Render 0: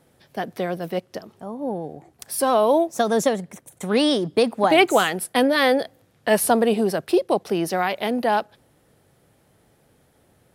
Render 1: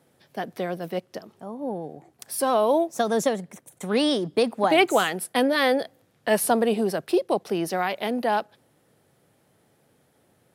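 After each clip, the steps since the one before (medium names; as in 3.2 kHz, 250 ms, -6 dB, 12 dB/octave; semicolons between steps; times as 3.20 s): high-pass 110 Hz; trim -3 dB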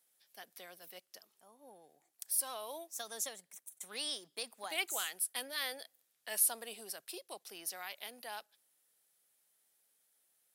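differentiator; trim -4 dB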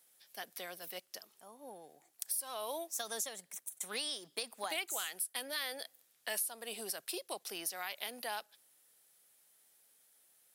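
compression 6:1, threshold -42 dBFS, peak gain reduction 16 dB; trim +7 dB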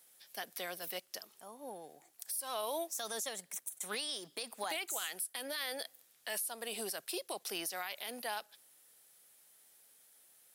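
peak limiter -31.5 dBFS, peak gain reduction 10.5 dB; trim +4 dB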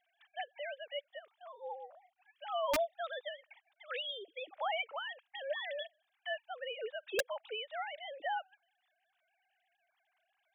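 formants replaced by sine waves; integer overflow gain 26 dB; trim +1 dB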